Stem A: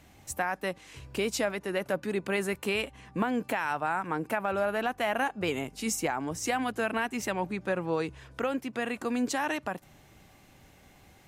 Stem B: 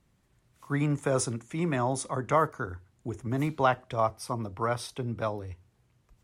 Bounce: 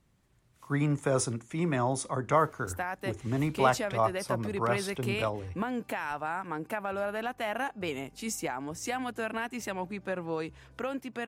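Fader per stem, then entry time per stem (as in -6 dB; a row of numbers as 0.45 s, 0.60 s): -4.0 dB, -0.5 dB; 2.40 s, 0.00 s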